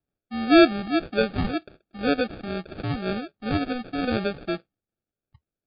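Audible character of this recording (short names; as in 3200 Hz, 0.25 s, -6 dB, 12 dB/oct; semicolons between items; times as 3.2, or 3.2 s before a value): phasing stages 8, 2 Hz, lowest notch 430–1800 Hz; aliases and images of a low sample rate 1000 Hz, jitter 0%; MP3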